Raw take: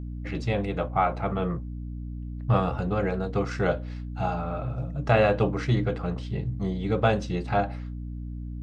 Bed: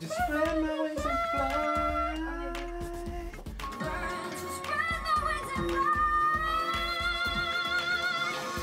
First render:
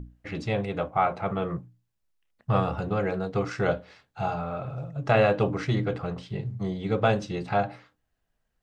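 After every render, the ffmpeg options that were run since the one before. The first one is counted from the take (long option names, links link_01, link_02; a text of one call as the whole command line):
ffmpeg -i in.wav -af "bandreject=frequency=60:width_type=h:width=6,bandreject=frequency=120:width_type=h:width=6,bandreject=frequency=180:width_type=h:width=6,bandreject=frequency=240:width_type=h:width=6,bandreject=frequency=300:width_type=h:width=6" out.wav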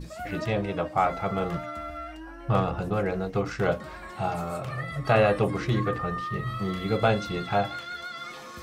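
ffmpeg -i in.wav -i bed.wav -filter_complex "[1:a]volume=-7.5dB[link_01];[0:a][link_01]amix=inputs=2:normalize=0" out.wav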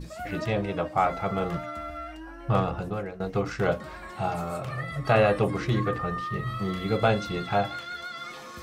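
ffmpeg -i in.wav -filter_complex "[0:a]asplit=2[link_01][link_02];[link_01]atrim=end=3.2,asetpts=PTS-STARTPTS,afade=type=out:start_time=2.49:duration=0.71:curve=qsin:silence=0.158489[link_03];[link_02]atrim=start=3.2,asetpts=PTS-STARTPTS,afade=type=in:duration=0.004:curve=hsin:silence=0.158489[link_04];[link_03][link_04]concat=n=2:v=0:a=1" out.wav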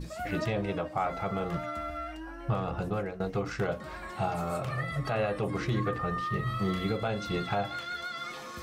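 ffmpeg -i in.wav -af "alimiter=limit=-19.5dB:level=0:latency=1:release=233" out.wav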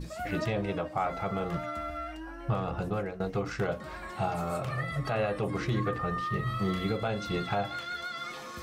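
ffmpeg -i in.wav -af anull out.wav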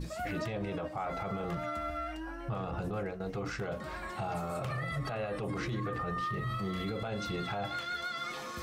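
ffmpeg -i in.wav -af "alimiter=level_in=3.5dB:limit=-24dB:level=0:latency=1:release=26,volume=-3.5dB,areverse,acompressor=mode=upward:threshold=-37dB:ratio=2.5,areverse" out.wav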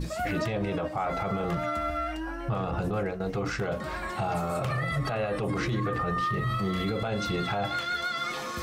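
ffmpeg -i in.wav -af "volume=6.5dB" out.wav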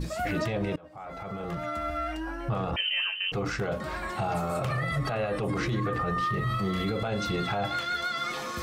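ffmpeg -i in.wav -filter_complex "[0:a]asettb=1/sr,asplit=3[link_01][link_02][link_03];[link_01]atrim=end=2.764[link_04];[link_02]atrim=start=2.76:end=3.32,asetpts=PTS-STARTPTS,afade=type=in:duration=0.004:curve=qsin,afade=type=out:start_time=0.556:duration=0.004:curve=qsin,lowpass=frequency=2700:width_type=q:width=0.5098,lowpass=frequency=2700:width_type=q:width=0.6013,lowpass=frequency=2700:width_type=q:width=0.9,lowpass=frequency=2700:width_type=q:width=2.563,afreqshift=-3200[link_05];[link_03]atrim=start=3.316[link_06];[link_04][link_05]acrossfade=duration=0.004:curve1=hsin:curve2=qsin[link_07];[link_07][link_06]acrossfade=duration=0.004:curve1=qsin:curve2=hsin,asplit=2[link_08][link_09];[link_08]atrim=end=0.76,asetpts=PTS-STARTPTS,afade=type=out:start_time=0.756:duration=0.004:curve=hsin:silence=0.0668344[link_10];[link_09]atrim=start=0.76,asetpts=PTS-STARTPTS,afade=type=in:duration=1.36:silence=0.0668344[link_11];[link_10][link_11]concat=n=2:v=0:a=1" out.wav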